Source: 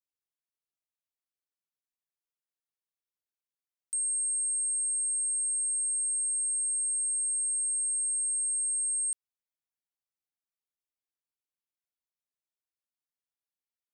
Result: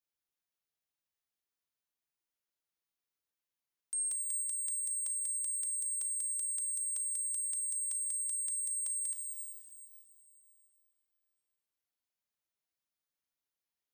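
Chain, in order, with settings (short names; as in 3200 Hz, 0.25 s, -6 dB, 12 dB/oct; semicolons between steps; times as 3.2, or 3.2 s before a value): notch 8000 Hz, Q 6.2; crackling interface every 0.19 s, samples 128, repeat, from 0.69; shimmer reverb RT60 2.5 s, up +12 st, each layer -8 dB, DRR 3 dB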